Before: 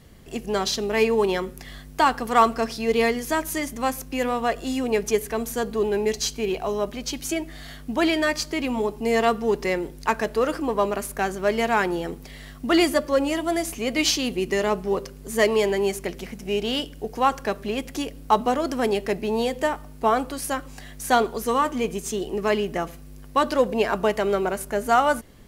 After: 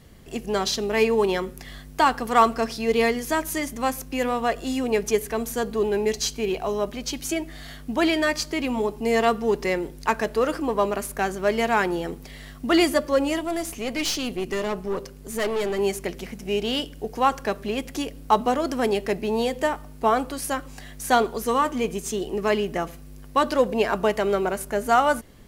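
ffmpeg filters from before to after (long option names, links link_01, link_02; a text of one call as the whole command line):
ffmpeg -i in.wav -filter_complex "[0:a]asettb=1/sr,asplit=3[link_01][link_02][link_03];[link_01]atrim=end=13.394[link_04];[link_02]atrim=start=13.39:end=15.79,asetpts=PTS-STARTPTS,afade=type=in:duration=0.004:curve=qsin,afade=type=out:start_time=2.396:duration=0.004:curve=qsin,aeval=exprs='(tanh(11.2*val(0)+0.45)-tanh(0.45))/11.2':channel_layout=same[link_05];[link_03]atrim=start=15.786[link_06];[link_04][link_05]acrossfade=duration=0.004:curve1=hsin:curve2=qsin[link_07];[link_07][link_06]acrossfade=duration=0.004:curve1=qsin:curve2=hsin" out.wav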